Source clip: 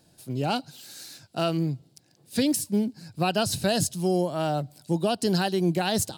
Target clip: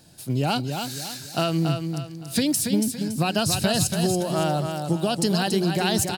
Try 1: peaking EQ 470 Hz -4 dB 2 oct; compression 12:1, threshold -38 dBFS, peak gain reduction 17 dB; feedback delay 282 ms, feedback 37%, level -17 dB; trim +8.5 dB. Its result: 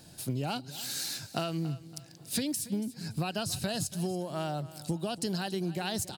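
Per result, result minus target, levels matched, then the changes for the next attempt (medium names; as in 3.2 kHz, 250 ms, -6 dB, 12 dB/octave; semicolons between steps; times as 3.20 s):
compression: peak gain reduction +10 dB; echo-to-direct -11 dB
change: compression 12:1, threshold -27 dBFS, peak gain reduction 7 dB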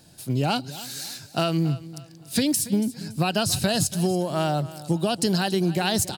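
echo-to-direct -11 dB
change: feedback delay 282 ms, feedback 37%, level -6 dB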